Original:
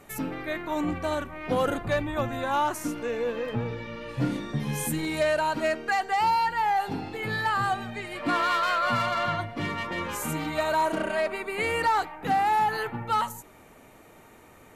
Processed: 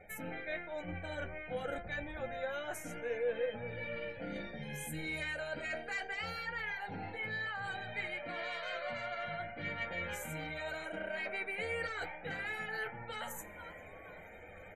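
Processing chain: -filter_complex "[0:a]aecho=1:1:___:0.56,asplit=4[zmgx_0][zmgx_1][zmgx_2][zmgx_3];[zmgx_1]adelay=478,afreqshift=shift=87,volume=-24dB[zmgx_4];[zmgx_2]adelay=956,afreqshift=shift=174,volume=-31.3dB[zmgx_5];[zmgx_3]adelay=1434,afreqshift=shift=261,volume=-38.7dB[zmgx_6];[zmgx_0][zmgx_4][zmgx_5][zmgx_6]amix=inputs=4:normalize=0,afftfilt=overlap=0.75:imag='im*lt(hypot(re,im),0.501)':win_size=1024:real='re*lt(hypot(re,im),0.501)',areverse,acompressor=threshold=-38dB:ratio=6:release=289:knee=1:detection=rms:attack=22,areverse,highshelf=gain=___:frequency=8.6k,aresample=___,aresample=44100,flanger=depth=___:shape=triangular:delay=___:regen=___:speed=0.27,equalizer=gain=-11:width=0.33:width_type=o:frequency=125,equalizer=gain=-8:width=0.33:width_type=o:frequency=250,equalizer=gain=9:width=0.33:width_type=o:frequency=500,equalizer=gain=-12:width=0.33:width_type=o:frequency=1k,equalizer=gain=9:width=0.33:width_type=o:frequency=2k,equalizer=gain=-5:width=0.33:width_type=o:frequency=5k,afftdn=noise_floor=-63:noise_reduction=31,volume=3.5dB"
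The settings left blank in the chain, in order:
1.3, -3.5, 32000, 5.2, 9.5, -46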